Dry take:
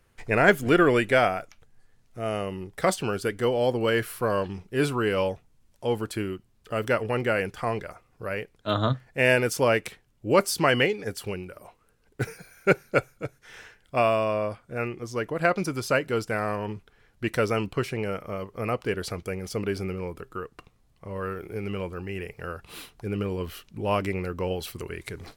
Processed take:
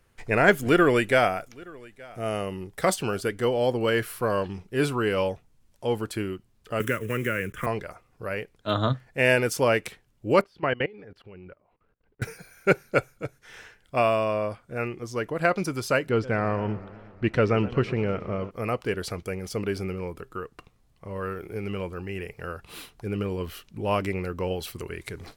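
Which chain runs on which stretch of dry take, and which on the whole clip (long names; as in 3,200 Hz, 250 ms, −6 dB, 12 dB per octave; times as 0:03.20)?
0:00.59–0:03.21: high-shelf EQ 7,800 Hz +5 dB + single-tap delay 872 ms −24 dB
0:06.80–0:07.67: one scale factor per block 5 bits + phaser with its sweep stopped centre 1,900 Hz, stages 4 + multiband upward and downward compressor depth 100%
0:10.41–0:12.22: output level in coarse steps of 22 dB + high-frequency loss of the air 360 metres
0:16.09–0:18.51: low-pass filter 3,800 Hz + low-shelf EQ 380 Hz +6 dB + feedback echo with a swinging delay time 120 ms, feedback 69%, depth 167 cents, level −17.5 dB
whole clip: no processing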